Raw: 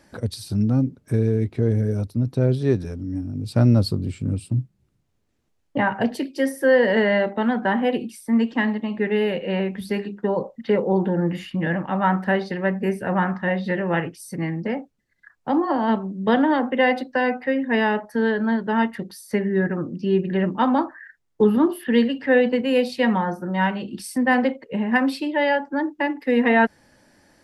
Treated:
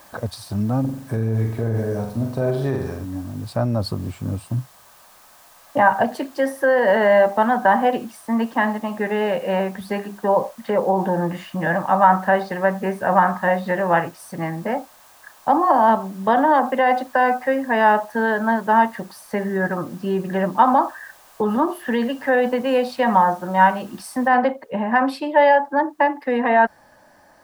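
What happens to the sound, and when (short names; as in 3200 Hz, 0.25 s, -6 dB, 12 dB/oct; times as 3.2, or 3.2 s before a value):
0.8–3.05 flutter echo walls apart 7.6 m, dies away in 0.61 s
24.28 noise floor step -50 dB -67 dB
whole clip: notch 1400 Hz, Q 8.3; limiter -12.5 dBFS; band shelf 960 Hz +12 dB; gain -1.5 dB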